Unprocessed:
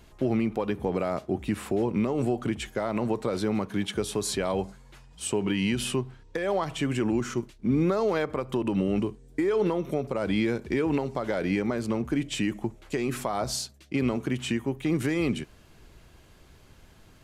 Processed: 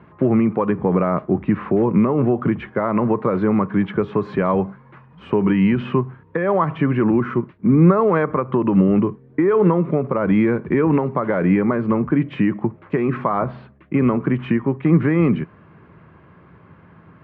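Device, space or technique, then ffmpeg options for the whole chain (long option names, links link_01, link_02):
bass cabinet: -filter_complex "[0:a]highpass=frequency=88:width=0.5412,highpass=frequency=88:width=1.3066,equalizer=frequency=170:width_type=q:width=4:gain=8,equalizer=frequency=720:width_type=q:width=4:gain=-4,equalizer=frequency=1100:width_type=q:width=4:gain=7,lowpass=frequency=2000:width=0.5412,lowpass=frequency=2000:width=1.3066,asettb=1/sr,asplit=3[link_01][link_02][link_03];[link_01]atrim=end=13.394[link_04];[link_02]atrim=start=13.39:end=13.99,asetpts=PTS-STARTPTS,afade=type=in:duration=0.004:curve=qsin,afade=type=out:start_time=0.596:duration=0.004:curve=qsin,lowpass=frequency=3400:width=0.5412,lowpass=frequency=3400:width=1.3066[link_05];[link_03]atrim=start=13.986[link_06];[link_04][link_05]acrossfade=duration=0.004:curve1=hsin:curve2=qsin[link_07];[link_07][link_06]acrossfade=duration=0.004:curve1=qsin:curve2=hsin,volume=8.5dB"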